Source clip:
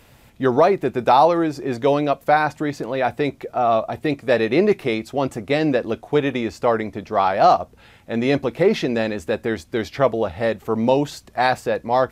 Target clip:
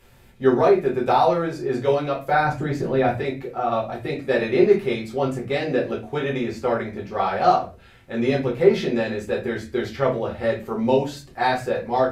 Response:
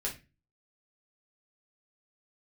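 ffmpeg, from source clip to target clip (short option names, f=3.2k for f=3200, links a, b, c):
-filter_complex "[0:a]asettb=1/sr,asplit=3[a][b][c];[a]atrim=end=2.334[d];[b]atrim=start=2.33:end=3.11,asetpts=PTS-STARTPTS,afade=t=in:d=0.004:c=qsin,afade=t=out:st=0.776:d=0.004:c=qsin,lowshelf=f=370:g=9.5[e];[c]atrim=start=3.106[f];[d][e]acrossfade=d=0.004:c1=hsin:c2=qsin[g];[g][f]acrossfade=d=0.004:c1=qsin:c2=hsin[h];[1:a]atrim=start_sample=2205,asetrate=40572,aresample=44100[i];[h][i]afir=irnorm=-1:irlink=0,volume=-6dB"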